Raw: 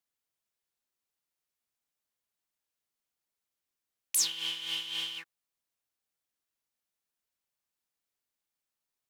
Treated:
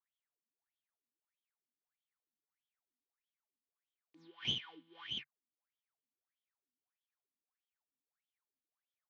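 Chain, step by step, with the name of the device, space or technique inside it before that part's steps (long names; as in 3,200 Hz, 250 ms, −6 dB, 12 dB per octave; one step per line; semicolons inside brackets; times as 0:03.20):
wah-wah guitar rig (LFO wah 1.6 Hz 240–3,300 Hz, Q 12; tube saturation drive 33 dB, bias 0.75; loudspeaker in its box 89–4,200 Hz, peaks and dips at 140 Hz +8 dB, 550 Hz −8 dB, 2,800 Hz −7 dB)
level +14 dB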